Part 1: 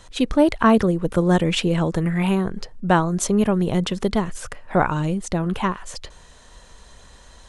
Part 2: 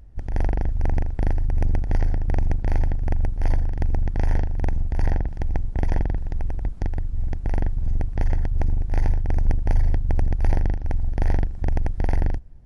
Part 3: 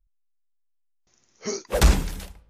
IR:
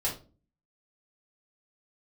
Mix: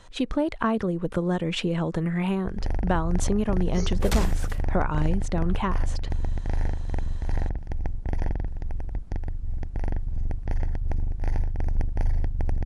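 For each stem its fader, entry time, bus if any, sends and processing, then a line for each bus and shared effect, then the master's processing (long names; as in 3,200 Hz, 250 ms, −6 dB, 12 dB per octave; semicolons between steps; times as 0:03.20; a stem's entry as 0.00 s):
−2.5 dB, 0.00 s, no send, high-shelf EQ 5,600 Hz −9.5 dB; downward compressor 3 to 1, threshold −20 dBFS, peak gain reduction 7.5 dB
−5.0 dB, 2.30 s, no send, no processing
−7.5 dB, 2.30 s, no send, no processing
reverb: not used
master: no processing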